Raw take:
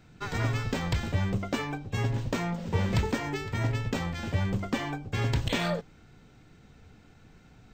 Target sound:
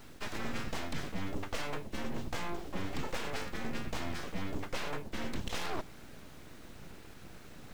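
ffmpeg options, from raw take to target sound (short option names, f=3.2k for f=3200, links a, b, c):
-af "areverse,acompressor=threshold=-38dB:ratio=6,areverse,aeval=exprs='abs(val(0))':c=same,acrusher=bits=10:mix=0:aa=0.000001,volume=6dB"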